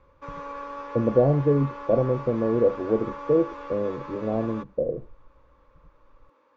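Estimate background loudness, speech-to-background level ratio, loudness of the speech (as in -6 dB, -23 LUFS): -38.0 LUFS, 13.0 dB, -25.0 LUFS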